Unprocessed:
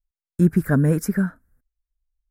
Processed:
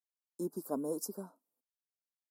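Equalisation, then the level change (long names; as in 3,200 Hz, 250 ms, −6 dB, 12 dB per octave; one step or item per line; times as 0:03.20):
high-pass filter 270 Hz 24 dB per octave
Chebyshev band-stop filter 1,000–4,500 Hz, order 3
low-shelf EQ 370 Hz −10.5 dB
−6.5 dB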